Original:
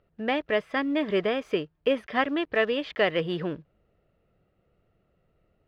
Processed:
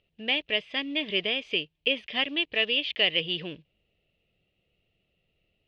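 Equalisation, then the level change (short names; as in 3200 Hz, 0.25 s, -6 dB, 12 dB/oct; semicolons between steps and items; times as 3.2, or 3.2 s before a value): LPF 4100 Hz 12 dB/oct; resonant high shelf 2000 Hz +12 dB, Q 3; -7.0 dB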